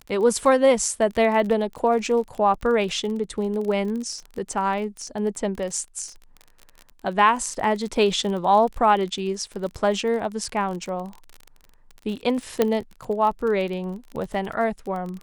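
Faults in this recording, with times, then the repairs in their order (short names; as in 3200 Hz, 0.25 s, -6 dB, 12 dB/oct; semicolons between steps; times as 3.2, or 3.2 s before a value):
crackle 33/s -30 dBFS
12.62 pop -6 dBFS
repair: de-click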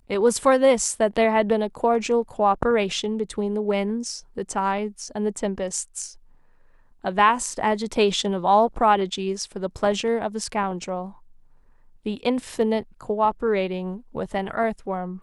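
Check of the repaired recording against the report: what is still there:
12.62 pop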